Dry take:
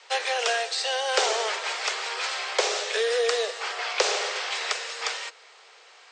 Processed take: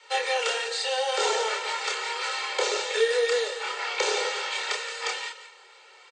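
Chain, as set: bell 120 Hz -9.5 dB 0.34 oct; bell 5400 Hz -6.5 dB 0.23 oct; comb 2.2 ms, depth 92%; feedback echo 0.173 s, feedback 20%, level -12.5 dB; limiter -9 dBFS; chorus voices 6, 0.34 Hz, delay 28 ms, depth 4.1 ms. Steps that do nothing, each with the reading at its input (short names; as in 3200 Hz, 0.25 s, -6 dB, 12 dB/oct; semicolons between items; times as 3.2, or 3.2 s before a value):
bell 120 Hz: input band starts at 340 Hz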